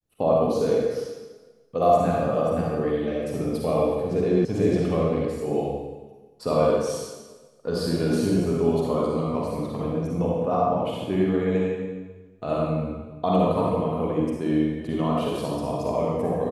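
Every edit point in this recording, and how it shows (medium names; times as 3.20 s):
4.45 s: sound stops dead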